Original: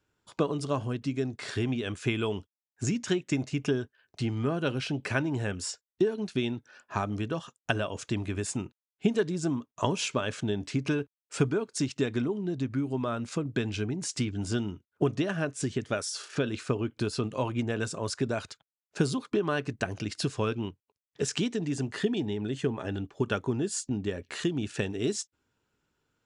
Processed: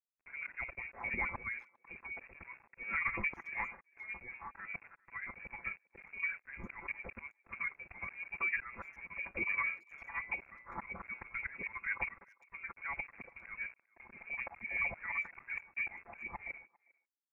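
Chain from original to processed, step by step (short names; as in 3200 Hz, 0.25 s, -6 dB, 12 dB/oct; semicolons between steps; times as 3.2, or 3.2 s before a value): HPF 360 Hz 12 dB/oct; notches 60/120/180/240/300/360/420/480/540/600 Hz; comb 6.3 ms, depth 99%; compressor 20:1, threshold -35 dBFS, peak gain reduction 17 dB; auto swell 0.402 s; time stretch by phase-locked vocoder 0.66×; sample gate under -60 dBFS; inverted band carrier 2600 Hz; speakerphone echo 0.4 s, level -26 dB; gain +6.5 dB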